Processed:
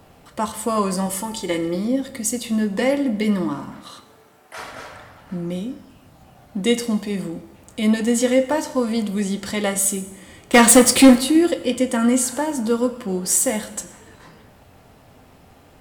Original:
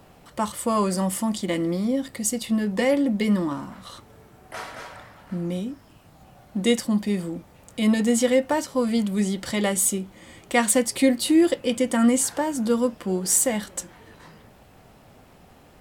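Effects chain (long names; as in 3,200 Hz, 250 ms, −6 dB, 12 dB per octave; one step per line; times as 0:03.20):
0:01.06–0:01.75: comb filter 2.3 ms, depth 58%
0:03.78–0:04.57: high-pass filter 200 Hz → 810 Hz 6 dB per octave
0:10.53–0:11.19: leveller curve on the samples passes 3
convolution reverb RT60 1.0 s, pre-delay 5 ms, DRR 8.5 dB
level +1.5 dB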